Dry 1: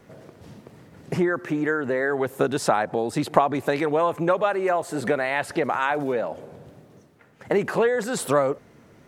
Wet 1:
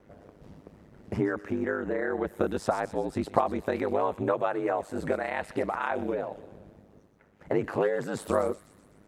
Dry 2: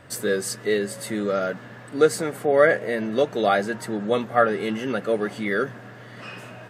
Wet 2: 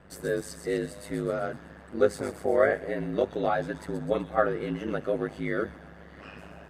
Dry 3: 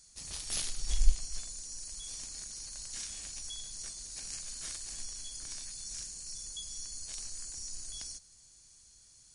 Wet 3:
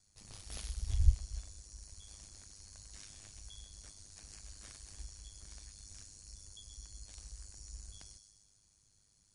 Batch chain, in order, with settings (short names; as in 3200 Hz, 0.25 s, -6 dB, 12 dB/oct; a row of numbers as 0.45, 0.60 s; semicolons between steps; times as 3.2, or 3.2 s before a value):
thin delay 0.126 s, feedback 57%, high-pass 4200 Hz, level -6 dB; ring modulator 51 Hz; high shelf 2300 Hz -9.5 dB; gain -2 dB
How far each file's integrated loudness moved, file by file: -6.0, -6.0, -5.0 LU